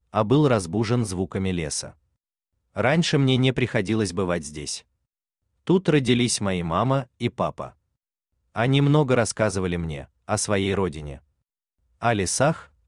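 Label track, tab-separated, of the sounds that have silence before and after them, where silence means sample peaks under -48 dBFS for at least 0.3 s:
2.760000	4.810000	sound
5.670000	7.720000	sound
8.550000	11.190000	sound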